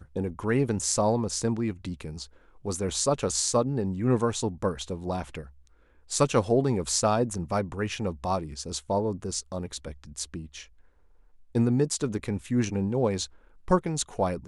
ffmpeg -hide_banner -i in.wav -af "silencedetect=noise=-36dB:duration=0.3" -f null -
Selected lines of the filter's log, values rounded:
silence_start: 2.25
silence_end: 2.65 | silence_duration: 0.40
silence_start: 5.42
silence_end: 6.11 | silence_duration: 0.69
silence_start: 10.62
silence_end: 11.55 | silence_duration: 0.93
silence_start: 13.26
silence_end: 13.68 | silence_duration: 0.43